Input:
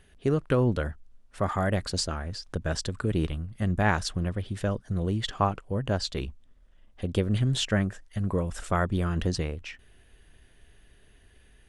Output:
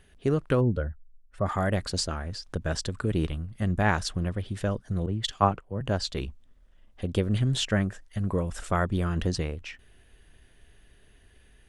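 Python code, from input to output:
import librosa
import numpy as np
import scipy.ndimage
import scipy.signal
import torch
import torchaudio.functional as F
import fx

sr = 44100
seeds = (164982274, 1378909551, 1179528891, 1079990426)

y = fx.spec_expand(x, sr, power=1.5, at=(0.6, 1.45), fade=0.02)
y = fx.band_widen(y, sr, depth_pct=100, at=(5.06, 5.81))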